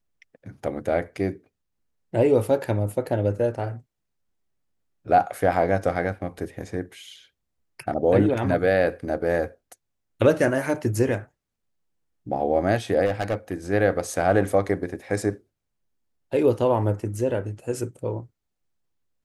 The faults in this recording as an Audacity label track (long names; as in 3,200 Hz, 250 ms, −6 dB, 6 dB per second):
13.050000	13.530000	clipping −18.5 dBFS